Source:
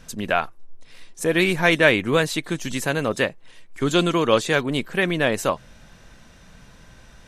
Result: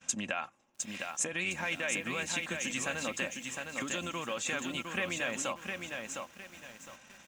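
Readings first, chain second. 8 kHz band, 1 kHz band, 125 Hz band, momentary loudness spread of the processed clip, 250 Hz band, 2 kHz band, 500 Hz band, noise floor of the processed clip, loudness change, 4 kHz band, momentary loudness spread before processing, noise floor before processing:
-0.5 dB, -13.5 dB, -18.5 dB, 14 LU, -16.0 dB, -11.5 dB, -18.0 dB, -58 dBFS, -13.5 dB, -11.0 dB, 10 LU, -49 dBFS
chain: octave divider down 1 oct, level -4 dB; expander -38 dBFS; comb 3.7 ms, depth 32%; peak limiter -12.5 dBFS, peak gain reduction 10.5 dB; compression 10:1, threshold -35 dBFS, peak gain reduction 18 dB; cabinet simulation 220–8600 Hz, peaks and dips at 310 Hz -8 dB, 440 Hz -10 dB, 2.6 kHz +7 dB, 4.4 kHz -7 dB, 6.9 kHz +9 dB; bit-crushed delay 709 ms, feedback 35%, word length 10-bit, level -4.5 dB; trim +4.5 dB

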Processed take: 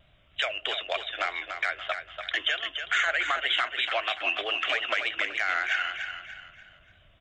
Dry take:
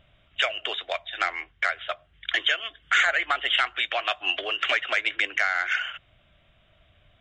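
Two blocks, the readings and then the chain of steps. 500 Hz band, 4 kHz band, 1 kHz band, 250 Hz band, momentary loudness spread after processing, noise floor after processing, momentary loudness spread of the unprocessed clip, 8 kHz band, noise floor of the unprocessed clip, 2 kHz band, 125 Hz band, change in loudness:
-1.0 dB, -2.0 dB, -2.5 dB, -1.0 dB, 9 LU, -60 dBFS, 10 LU, -3.5 dB, -62 dBFS, -2.5 dB, no reading, -2.5 dB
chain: peak limiter -15 dBFS, peak gain reduction 4.5 dB; feedback delay 290 ms, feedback 38%, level -7.5 dB; vibrato 3.2 Hz 59 cents; trim -1 dB

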